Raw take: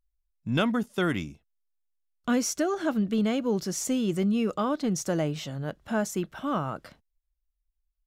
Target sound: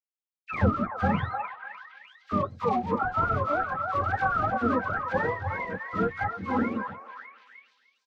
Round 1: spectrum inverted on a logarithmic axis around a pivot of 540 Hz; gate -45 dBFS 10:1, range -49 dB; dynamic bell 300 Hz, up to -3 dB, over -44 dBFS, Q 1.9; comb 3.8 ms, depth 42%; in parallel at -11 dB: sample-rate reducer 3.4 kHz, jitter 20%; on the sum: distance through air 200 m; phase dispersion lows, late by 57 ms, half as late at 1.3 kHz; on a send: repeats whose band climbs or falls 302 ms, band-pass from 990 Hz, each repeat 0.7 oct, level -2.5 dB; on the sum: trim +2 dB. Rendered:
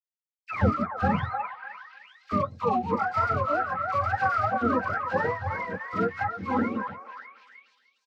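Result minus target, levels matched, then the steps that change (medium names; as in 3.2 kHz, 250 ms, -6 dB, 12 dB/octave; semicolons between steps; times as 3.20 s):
sample-rate reducer: distortion -8 dB
change: sample-rate reducer 1.5 kHz, jitter 20%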